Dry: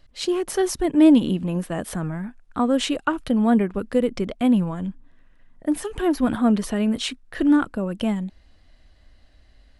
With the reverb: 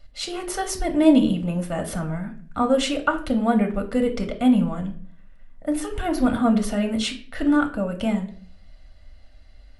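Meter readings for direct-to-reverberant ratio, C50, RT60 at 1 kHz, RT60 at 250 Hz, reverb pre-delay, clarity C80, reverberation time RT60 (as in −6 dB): 3.5 dB, 12.0 dB, 0.40 s, 0.60 s, 3 ms, 16.0 dB, 0.50 s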